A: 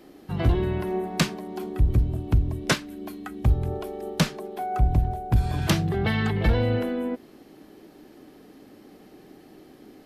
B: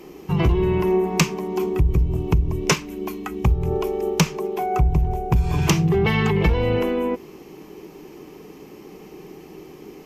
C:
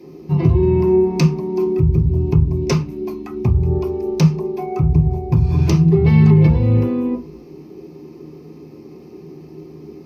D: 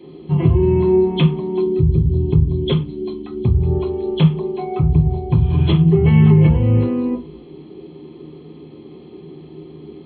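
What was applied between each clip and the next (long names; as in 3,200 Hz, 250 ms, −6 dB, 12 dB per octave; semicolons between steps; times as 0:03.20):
EQ curve with evenly spaced ripples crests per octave 0.76, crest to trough 10 dB; downward compressor 4 to 1, threshold −22 dBFS, peak gain reduction 9 dB; level +7 dB
surface crackle 190 per second −47 dBFS; convolution reverb RT60 0.30 s, pre-delay 3 ms, DRR −1.5 dB; level −11.5 dB
hearing-aid frequency compression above 2,800 Hz 4 to 1; gain on a spectral selection 0:01.61–0:03.60, 540–3,000 Hz −6 dB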